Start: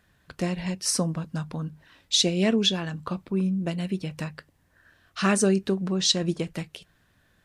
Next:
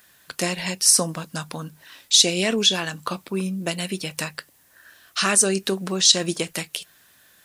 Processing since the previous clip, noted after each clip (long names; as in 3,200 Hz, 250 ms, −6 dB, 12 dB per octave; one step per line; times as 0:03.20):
RIAA equalisation recording
in parallel at −2 dB: compressor whose output falls as the input rises −28 dBFS, ratio −1
on the sum: level −1 dB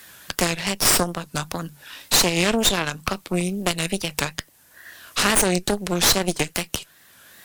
tape wow and flutter 130 cents
harmonic generator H 8 −11 dB, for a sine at −1.5 dBFS
multiband upward and downward compressor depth 40%
level −2 dB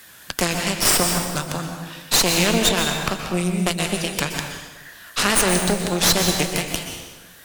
dense smooth reverb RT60 1.3 s, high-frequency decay 0.9×, pre-delay 110 ms, DRR 3.5 dB